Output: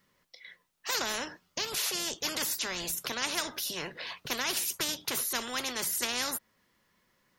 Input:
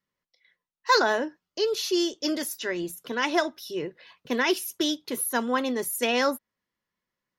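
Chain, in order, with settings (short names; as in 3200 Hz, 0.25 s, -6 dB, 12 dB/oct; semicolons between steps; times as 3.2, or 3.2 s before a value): spectral compressor 4:1; gain -5 dB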